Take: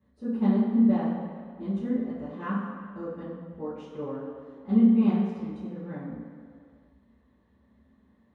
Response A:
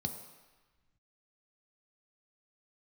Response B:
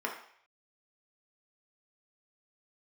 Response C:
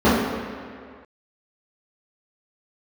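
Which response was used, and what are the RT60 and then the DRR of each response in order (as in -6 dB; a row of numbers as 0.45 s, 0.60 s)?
C; 1.2 s, 0.60 s, 2.0 s; 5.5 dB, -1.0 dB, -13.5 dB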